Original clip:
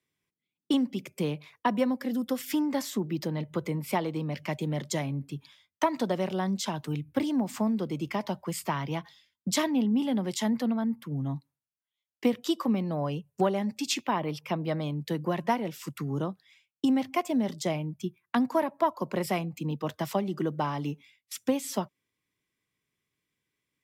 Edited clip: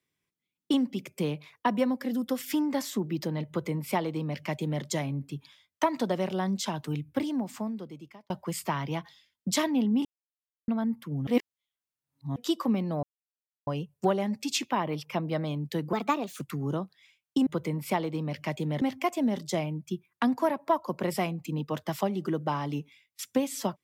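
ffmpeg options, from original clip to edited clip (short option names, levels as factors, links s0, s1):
-filter_complex "[0:a]asplit=11[s0][s1][s2][s3][s4][s5][s6][s7][s8][s9][s10];[s0]atrim=end=8.3,asetpts=PTS-STARTPTS,afade=t=out:st=6.99:d=1.31[s11];[s1]atrim=start=8.3:end=10.05,asetpts=PTS-STARTPTS,afade=t=in:d=0.004:c=hsin,afade=t=out:st=1.746:d=0.004:c=hsin[s12];[s2]atrim=start=10.05:end=10.68,asetpts=PTS-STARTPTS,volume=0[s13];[s3]atrim=start=10.68:end=11.272,asetpts=PTS-STARTPTS,afade=t=in:d=0.004:c=hsin[s14];[s4]atrim=start=11.268:end=12.362,asetpts=PTS-STARTPTS,areverse[s15];[s5]atrim=start=12.358:end=13.03,asetpts=PTS-STARTPTS,afade=t=out:st=0.668:d=0.004:c=hsin,apad=pad_dur=0.64[s16];[s6]atrim=start=13.03:end=15.294,asetpts=PTS-STARTPTS,afade=t=in:d=0.004:c=hsin[s17];[s7]atrim=start=15.29:end=15.88,asetpts=PTS-STARTPTS,asetrate=54684,aresample=44100,atrim=end_sample=20983,asetpts=PTS-STARTPTS[s18];[s8]atrim=start=15.876:end=16.942[s19];[s9]atrim=start=3.478:end=4.832[s20];[s10]atrim=start=16.938[s21];[s11][s12][s13][s14]concat=n=4:v=0:a=1[s22];[s22][s15]acrossfade=d=0.004:c1=hsin:c2=hsin[s23];[s16][s17]concat=n=2:v=0:a=1[s24];[s23][s24]acrossfade=d=0.004:c1=hsin:c2=hsin[s25];[s25][s18]acrossfade=d=0.004:c1=hsin:c2=hsin[s26];[s26][s19]acrossfade=d=0.004:c1=hsin:c2=hsin[s27];[s27][s20]acrossfade=d=0.004:c1=hsin:c2=hsin[s28];[s28][s21]acrossfade=d=0.004:c1=hsin:c2=hsin"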